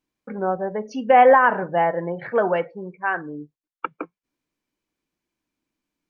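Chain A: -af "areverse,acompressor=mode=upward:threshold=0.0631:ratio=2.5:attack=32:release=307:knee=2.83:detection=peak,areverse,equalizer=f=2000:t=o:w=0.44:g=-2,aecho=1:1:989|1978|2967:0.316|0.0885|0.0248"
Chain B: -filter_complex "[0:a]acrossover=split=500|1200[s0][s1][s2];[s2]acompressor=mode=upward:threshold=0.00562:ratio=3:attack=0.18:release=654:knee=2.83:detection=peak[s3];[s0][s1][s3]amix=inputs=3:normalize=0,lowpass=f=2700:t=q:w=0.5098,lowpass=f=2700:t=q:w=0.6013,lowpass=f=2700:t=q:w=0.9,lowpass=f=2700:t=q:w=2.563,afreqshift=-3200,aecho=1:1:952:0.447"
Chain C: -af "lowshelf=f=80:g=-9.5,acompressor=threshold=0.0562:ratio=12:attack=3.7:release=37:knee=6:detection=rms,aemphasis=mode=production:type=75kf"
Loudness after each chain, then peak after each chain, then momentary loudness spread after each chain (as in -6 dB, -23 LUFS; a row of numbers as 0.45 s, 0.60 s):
-20.5 LUFS, -17.0 LUFS, -31.0 LUFS; -5.0 dBFS, -3.0 dBFS, -15.5 dBFS; 23 LU, 19 LU, 13 LU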